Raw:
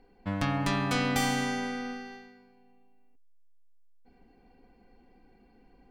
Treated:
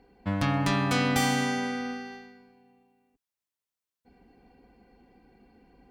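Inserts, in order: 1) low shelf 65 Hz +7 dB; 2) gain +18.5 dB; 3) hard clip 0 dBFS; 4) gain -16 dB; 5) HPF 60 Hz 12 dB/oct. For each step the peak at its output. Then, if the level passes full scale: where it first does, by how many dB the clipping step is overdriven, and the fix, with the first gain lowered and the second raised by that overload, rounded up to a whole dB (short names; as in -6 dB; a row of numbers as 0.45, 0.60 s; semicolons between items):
-13.0, +5.5, 0.0, -16.0, -13.0 dBFS; step 2, 5.5 dB; step 2 +12.5 dB, step 4 -10 dB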